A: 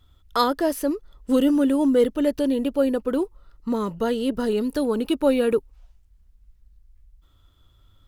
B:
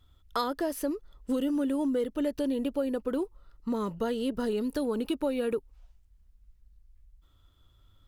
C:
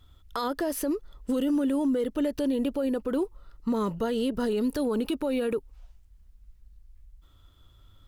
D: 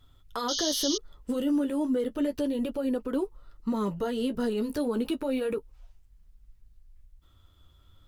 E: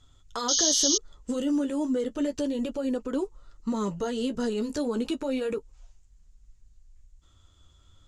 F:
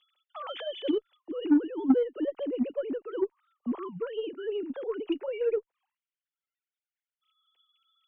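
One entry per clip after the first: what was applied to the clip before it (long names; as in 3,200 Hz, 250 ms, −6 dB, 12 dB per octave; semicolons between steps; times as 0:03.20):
downward compressor, threshold −21 dBFS, peak gain reduction 7.5 dB; level −4.5 dB
brickwall limiter −25.5 dBFS, peak gain reduction 9 dB; level +5.5 dB
flanger 0.32 Hz, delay 7 ms, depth 7 ms, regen −33%; sound drawn into the spectrogram noise, 0:00.48–0:00.98, 2,900–6,700 Hz −33 dBFS; level +2 dB
low-pass with resonance 7,000 Hz, resonance Q 5
three sine waves on the formant tracks; harmonic generator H 3 −15 dB, 5 −23 dB, 6 −41 dB, 8 −39 dB, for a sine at −10.5 dBFS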